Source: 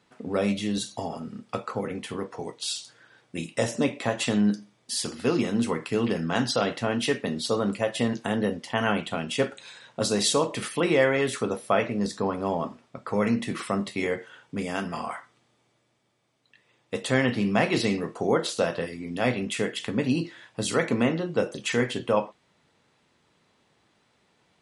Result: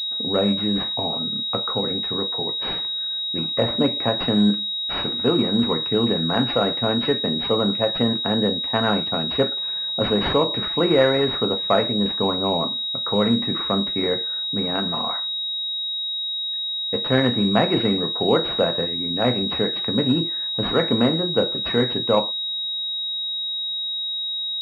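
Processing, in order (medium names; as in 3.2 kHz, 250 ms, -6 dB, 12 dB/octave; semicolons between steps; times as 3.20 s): class-D stage that switches slowly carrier 3.8 kHz; trim +4.5 dB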